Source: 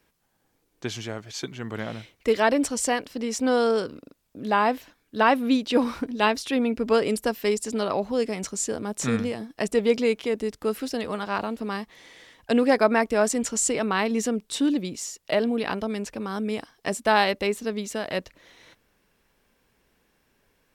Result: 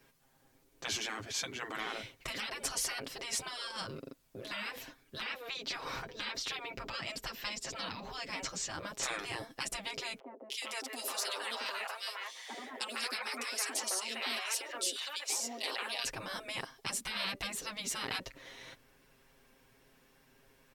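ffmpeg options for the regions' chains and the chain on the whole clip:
-filter_complex "[0:a]asettb=1/sr,asplit=3[a][b][c];[a]atrim=end=5.264[d];[b]atrim=start=5.26:end=9.03,asetpts=PTS-STARTPTS,afade=t=in:d=0.004:c=qsin,afade=t=out:st=3.766:d=0.004:c=qsin,equalizer=f=10k:w=2.4:g=-14.5,acrossover=split=6200[e][f];[f]acompressor=threshold=-49dB:ratio=4:attack=1:release=60[g];[e][g]amix=inputs=2:normalize=0[h];[c]atrim=start=9.026[i];[d][h]acrossfade=d=0.004:c1=hsin:c2=qsin[j];[j][i]acrossfade=d=0.004:c1=qsin:c2=hsin,asettb=1/sr,asplit=3[k][l][m];[k]atrim=end=10.194[n];[l]atrim=start=10.19:end=16.05,asetpts=PTS-STARTPTS,afade=t=in:d=0.004:c=qsin,afade=t=out:st=5.856:d=0.004:c=qsin,highpass=f=490:w=0.5412,highpass=f=490:w=1.3066,equalizer=f=7k:t=o:w=2.9:g=3.5,acrossover=split=810|2600[o][p][q];[q]adelay=310[r];[p]adelay=460[s];[o][s][r]amix=inputs=3:normalize=0,atrim=end_sample=258426[t];[m]atrim=start=16.046[u];[n][t]acrossfade=d=0.004:c1=hsin:c2=qsin[v];[v][u]acrossfade=d=0.004:c1=qsin:c2=hsin,acompressor=threshold=-23dB:ratio=6,aecho=1:1:7.5:0.8,afftfilt=real='re*lt(hypot(re,im),0.0708)':imag='im*lt(hypot(re,im),0.0708)':win_size=1024:overlap=0.75"

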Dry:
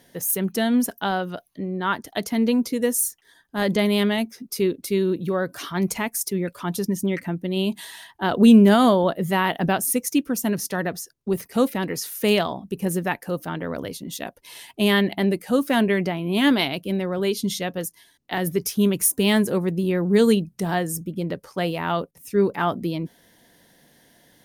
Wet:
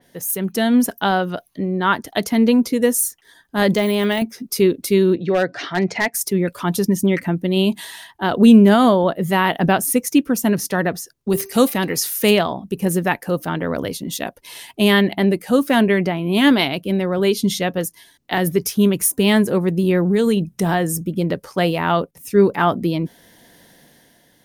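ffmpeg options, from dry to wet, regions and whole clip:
-filter_complex "[0:a]asettb=1/sr,asplit=3[a][b][c];[a]atrim=end=3.744[d];[b]atrim=start=3.74:end=4.22,asetpts=PTS-STARTPTS,afade=t=in:d=0.004:c=qsin,afade=t=out:st=0.476:d=0.004:c=qsin,highpass=f=330:p=1,deesser=0.9,highshelf=f=4.1k:g=11.5[e];[c]atrim=start=4.216[f];[d][e]acrossfade=d=0.004:c1=hsin:c2=qsin[g];[g][f]acrossfade=d=0.004:c1=qsin:c2=hsin,asettb=1/sr,asplit=3[h][i][j];[h]atrim=end=5.154[k];[i]atrim=start=5.15:end=6.14,asetpts=PTS-STARTPTS,afade=t=in:d=0.004:c=qsin,afade=t=out:st=0.986:d=0.004:c=qsin,highpass=f=110:w=0.5412,highpass=f=110:w=1.3066,equalizer=f=150:t=q:w=4:g=-5,equalizer=f=220:t=q:w=4:g=-7,equalizer=f=720:t=q:w=4:g=6,equalizer=f=1.1k:t=q:w=4:g=-9,equalizer=f=1.9k:t=q:w=4:g=7,equalizer=f=3.2k:t=q:w=4:g=-3,lowpass=f=5.2k:w=0.5412,lowpass=f=5.2k:w=1.3066,aeval=exprs='0.158*(abs(mod(val(0)/0.158+3,4)-2)-1)':c=same[l];[j]atrim=start=6.136[m];[k][l]acrossfade=d=0.004:c1=hsin:c2=qsin[n];[n][m]acrossfade=d=0.004:c1=qsin:c2=hsin,asettb=1/sr,asplit=3[o][p][q];[o]atrim=end=11.294[r];[p]atrim=start=11.29:end=12.31,asetpts=PTS-STARTPTS,afade=t=in:d=0.004:c=qsin,afade=t=out:st=1.016:d=0.004:c=qsin,highshelf=f=3k:g=8.5,bandreject=f=390.4:t=h:w=4,bandreject=f=780.8:t=h:w=4,bandreject=f=1.1712k:t=h:w=4,bandreject=f=1.5616k:t=h:w=4,bandreject=f=1.952k:t=h:w=4,bandreject=f=2.3424k:t=h:w=4,bandreject=f=2.7328k:t=h:w=4,bandreject=f=3.1232k:t=h:w=4,bandreject=f=3.5136k:t=h:w=4,bandreject=f=3.904k:t=h:w=4,bandreject=f=4.2944k:t=h:w=4,bandreject=f=4.6848k:t=h:w=4,bandreject=f=5.0752k:t=h:w=4,bandreject=f=5.4656k:t=h:w=4,bandreject=f=5.856k:t=h:w=4,bandreject=f=6.2464k:t=h:w=4[s];[q]atrim=start=12.306[t];[r][s]acrossfade=d=0.004:c1=hsin:c2=qsin[u];[u][t]acrossfade=d=0.004:c1=qsin:c2=hsin,asettb=1/sr,asplit=3[v][w][x];[v]atrim=end=20.004[y];[w]atrim=start=20:end=20.96,asetpts=PTS-STARTPTS,afade=t=in:d=0.004:c=qsin,afade=t=out:st=0.956:d=0.004:c=qsin,bandreject=f=4.5k:w=10,acompressor=threshold=-20dB:ratio=4:attack=3.2:release=140:knee=1:detection=peak[z];[x]atrim=start=20.956[aa];[y][z]acrossfade=d=0.004:c1=hsin:c2=qsin[ab];[ab][aa]acrossfade=d=0.004:c1=qsin:c2=hsin,dynaudnorm=f=130:g=9:m=7dB,adynamicequalizer=threshold=0.0251:dfrequency=3300:dqfactor=0.7:tfrequency=3300:tqfactor=0.7:attack=5:release=100:ratio=0.375:range=2.5:mode=cutabove:tftype=highshelf"

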